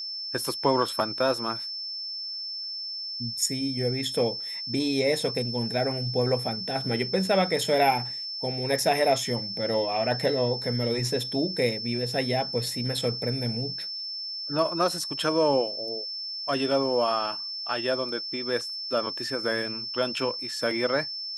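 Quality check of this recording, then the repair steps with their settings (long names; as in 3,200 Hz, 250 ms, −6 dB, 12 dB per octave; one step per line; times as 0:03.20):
whistle 5,300 Hz −32 dBFS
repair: notch filter 5,300 Hz, Q 30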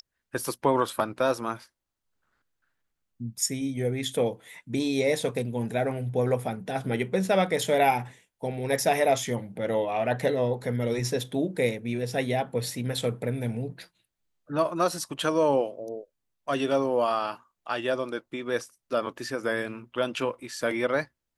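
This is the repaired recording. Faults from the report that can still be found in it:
none of them is left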